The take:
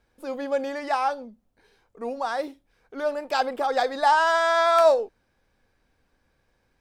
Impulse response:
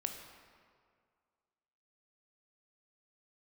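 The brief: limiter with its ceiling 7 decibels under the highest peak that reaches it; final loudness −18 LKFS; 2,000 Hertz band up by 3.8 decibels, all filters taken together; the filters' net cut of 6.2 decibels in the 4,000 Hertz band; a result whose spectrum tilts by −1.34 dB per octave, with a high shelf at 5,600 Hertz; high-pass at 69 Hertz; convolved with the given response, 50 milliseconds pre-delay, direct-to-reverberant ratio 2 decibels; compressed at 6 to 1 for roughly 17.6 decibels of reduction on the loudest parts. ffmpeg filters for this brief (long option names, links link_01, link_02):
-filter_complex "[0:a]highpass=69,equalizer=frequency=2000:width_type=o:gain=7,equalizer=frequency=4000:width_type=o:gain=-9,highshelf=frequency=5600:gain=-4,acompressor=threshold=-33dB:ratio=6,alimiter=level_in=4.5dB:limit=-24dB:level=0:latency=1,volume=-4.5dB,asplit=2[link_01][link_02];[1:a]atrim=start_sample=2205,adelay=50[link_03];[link_02][link_03]afir=irnorm=-1:irlink=0,volume=-2.5dB[link_04];[link_01][link_04]amix=inputs=2:normalize=0,volume=18dB"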